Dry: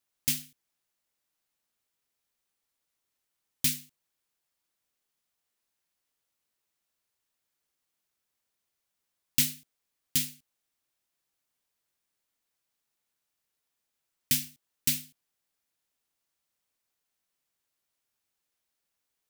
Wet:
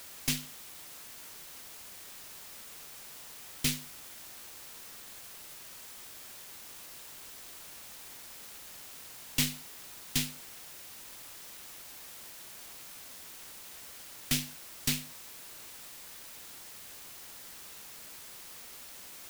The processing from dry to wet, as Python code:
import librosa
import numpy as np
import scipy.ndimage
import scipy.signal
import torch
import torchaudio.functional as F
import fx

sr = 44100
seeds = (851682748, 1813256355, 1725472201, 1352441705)

p1 = fx.high_shelf(x, sr, hz=6400.0, db=-11.0)
p2 = fx.tube_stage(p1, sr, drive_db=29.0, bias=0.65)
p3 = fx.quant_dither(p2, sr, seeds[0], bits=8, dither='triangular')
p4 = p2 + (p3 * librosa.db_to_amplitude(-3.5))
y = p4 * librosa.db_to_amplitude(3.5)